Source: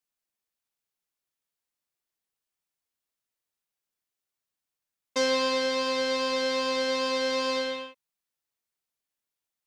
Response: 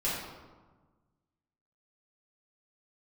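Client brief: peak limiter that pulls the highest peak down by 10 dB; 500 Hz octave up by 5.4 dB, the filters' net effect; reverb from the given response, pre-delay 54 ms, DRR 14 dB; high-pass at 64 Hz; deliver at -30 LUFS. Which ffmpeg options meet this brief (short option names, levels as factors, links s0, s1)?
-filter_complex "[0:a]highpass=64,equalizer=f=500:t=o:g=5.5,alimiter=limit=0.0794:level=0:latency=1,asplit=2[s0][s1];[1:a]atrim=start_sample=2205,adelay=54[s2];[s1][s2]afir=irnorm=-1:irlink=0,volume=0.0794[s3];[s0][s3]amix=inputs=2:normalize=0,volume=1.12"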